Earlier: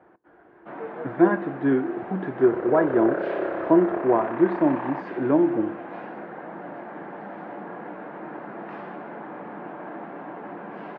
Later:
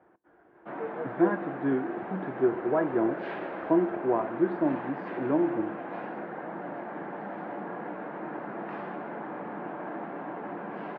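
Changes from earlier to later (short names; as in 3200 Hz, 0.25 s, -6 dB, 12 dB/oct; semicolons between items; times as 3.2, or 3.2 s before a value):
speech -6.0 dB; second sound -12.0 dB; master: add air absorption 55 m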